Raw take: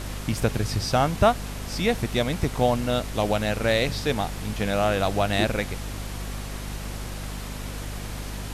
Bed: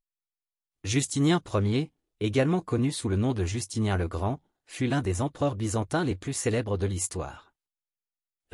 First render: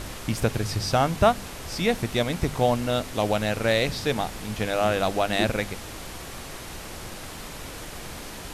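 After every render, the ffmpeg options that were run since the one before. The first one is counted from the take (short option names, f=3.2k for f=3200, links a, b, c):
-af "bandreject=f=50:t=h:w=4,bandreject=f=100:t=h:w=4,bandreject=f=150:t=h:w=4,bandreject=f=200:t=h:w=4,bandreject=f=250:t=h:w=4"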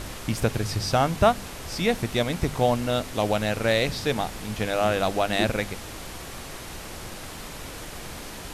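-af anull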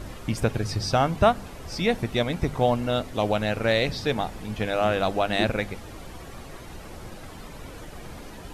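-af "afftdn=nr=10:nf=-39"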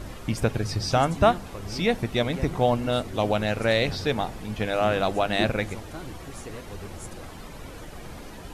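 -filter_complex "[1:a]volume=-13.5dB[a];[0:a][a]amix=inputs=2:normalize=0"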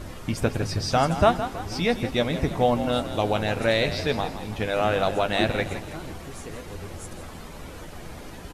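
-filter_complex "[0:a]asplit=2[a][b];[b]adelay=12,volume=-10.5dB[c];[a][c]amix=inputs=2:normalize=0,asplit=6[d][e][f][g][h][i];[e]adelay=163,afreqshift=40,volume=-11.5dB[j];[f]adelay=326,afreqshift=80,volume=-18.2dB[k];[g]adelay=489,afreqshift=120,volume=-25dB[l];[h]adelay=652,afreqshift=160,volume=-31.7dB[m];[i]adelay=815,afreqshift=200,volume=-38.5dB[n];[d][j][k][l][m][n]amix=inputs=6:normalize=0"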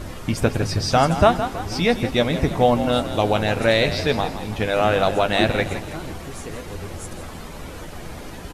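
-af "volume=4.5dB,alimiter=limit=-3dB:level=0:latency=1"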